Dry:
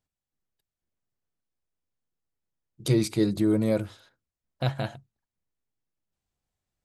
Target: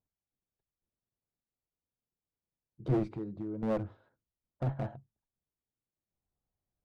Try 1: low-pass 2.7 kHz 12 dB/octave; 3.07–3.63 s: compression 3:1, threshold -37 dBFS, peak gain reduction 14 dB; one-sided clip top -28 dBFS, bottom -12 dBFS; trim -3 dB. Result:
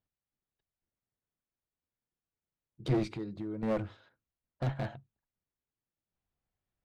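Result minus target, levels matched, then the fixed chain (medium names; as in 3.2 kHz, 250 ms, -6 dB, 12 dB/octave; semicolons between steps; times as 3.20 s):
2 kHz band +6.0 dB
low-pass 1 kHz 12 dB/octave; 3.07–3.63 s: compression 3:1, threshold -37 dBFS, peak gain reduction 13.5 dB; one-sided clip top -28 dBFS, bottom -12 dBFS; trim -3 dB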